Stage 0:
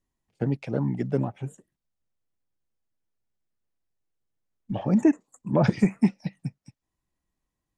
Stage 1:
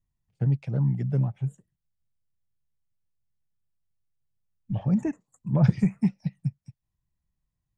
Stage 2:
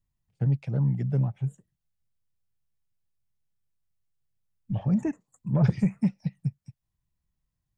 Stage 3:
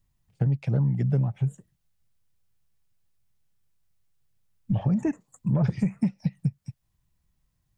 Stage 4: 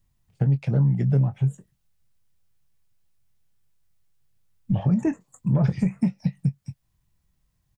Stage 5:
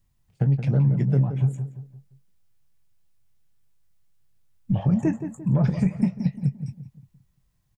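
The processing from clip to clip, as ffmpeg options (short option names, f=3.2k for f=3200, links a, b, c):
-af "lowshelf=f=200:t=q:w=1.5:g=11,volume=-7.5dB"
-af "asoftclip=type=tanh:threshold=-12.5dB"
-af "acompressor=threshold=-29dB:ratio=6,volume=8dB"
-filter_complex "[0:a]asplit=2[a][b];[b]adelay=22,volume=-10.5dB[c];[a][c]amix=inputs=2:normalize=0,volume=2dB"
-filter_complex "[0:a]asplit=2[a][b];[b]adelay=173,lowpass=f=1.6k:p=1,volume=-9dB,asplit=2[c][d];[d]adelay=173,lowpass=f=1.6k:p=1,volume=0.39,asplit=2[e][f];[f]adelay=173,lowpass=f=1.6k:p=1,volume=0.39,asplit=2[g][h];[h]adelay=173,lowpass=f=1.6k:p=1,volume=0.39[i];[a][c][e][g][i]amix=inputs=5:normalize=0"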